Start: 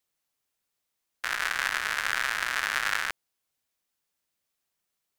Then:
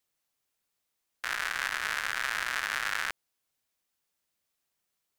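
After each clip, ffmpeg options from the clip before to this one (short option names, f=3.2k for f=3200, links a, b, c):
-af "alimiter=limit=-14.5dB:level=0:latency=1:release=90"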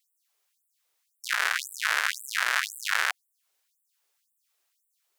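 -af "afftfilt=real='re*gte(b*sr/1024,300*pow(7700/300,0.5+0.5*sin(2*PI*1.9*pts/sr)))':imag='im*gte(b*sr/1024,300*pow(7700/300,0.5+0.5*sin(2*PI*1.9*pts/sr)))':win_size=1024:overlap=0.75,volume=6.5dB"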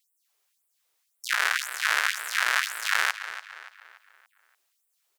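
-filter_complex "[0:a]asplit=2[a][b];[b]adelay=288,lowpass=f=5k:p=1,volume=-11.5dB,asplit=2[c][d];[d]adelay=288,lowpass=f=5k:p=1,volume=0.45,asplit=2[e][f];[f]adelay=288,lowpass=f=5k:p=1,volume=0.45,asplit=2[g][h];[h]adelay=288,lowpass=f=5k:p=1,volume=0.45,asplit=2[i][j];[j]adelay=288,lowpass=f=5k:p=1,volume=0.45[k];[a][c][e][g][i][k]amix=inputs=6:normalize=0,volume=1.5dB"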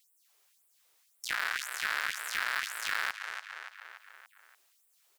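-af "acompressor=threshold=-52dB:ratio=1.5,asoftclip=type=hard:threshold=-25.5dB,volume=5dB"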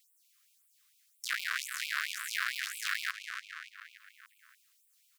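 -af "afftfilt=real='re*gte(b*sr/1024,970*pow(2300/970,0.5+0.5*sin(2*PI*4.4*pts/sr)))':imag='im*gte(b*sr/1024,970*pow(2300/970,0.5+0.5*sin(2*PI*4.4*pts/sr)))':win_size=1024:overlap=0.75"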